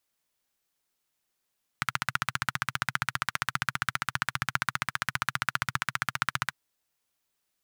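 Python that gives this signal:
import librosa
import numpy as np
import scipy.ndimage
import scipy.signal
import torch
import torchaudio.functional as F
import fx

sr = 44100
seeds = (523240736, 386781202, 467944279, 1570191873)

y = fx.engine_single(sr, seeds[0], length_s=4.71, rpm=1800, resonances_hz=(130.0, 1400.0))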